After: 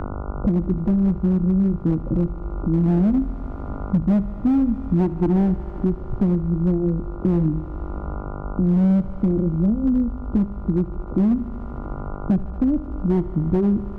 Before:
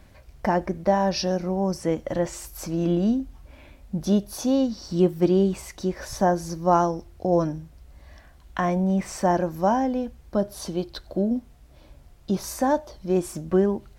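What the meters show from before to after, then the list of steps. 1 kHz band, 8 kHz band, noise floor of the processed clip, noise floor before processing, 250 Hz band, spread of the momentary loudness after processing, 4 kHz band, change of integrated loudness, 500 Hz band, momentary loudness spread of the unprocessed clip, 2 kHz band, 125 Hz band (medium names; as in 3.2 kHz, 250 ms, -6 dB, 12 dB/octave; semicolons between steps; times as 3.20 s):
-10.0 dB, under -25 dB, -32 dBFS, -51 dBFS, +6.0 dB, 12 LU, under -15 dB, +3.5 dB, -4.5 dB, 9 LU, no reading, +8.5 dB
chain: inverse Chebyshev low-pass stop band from 1.2 kHz, stop band 60 dB; tilt EQ -3.5 dB/octave; in parallel at -1.5 dB: peak limiter -15 dBFS, peak gain reduction 11 dB; on the sum: flange 0.39 Hz, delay 2.7 ms, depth 8.4 ms, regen -62%; overload inside the chain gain 13.5 dB; mains buzz 50 Hz, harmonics 29, -44 dBFS -4 dB/octave; on a send: thinning echo 75 ms, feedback 84%, high-pass 160 Hz, level -18 dB; on the sum: three bands compressed up and down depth 70%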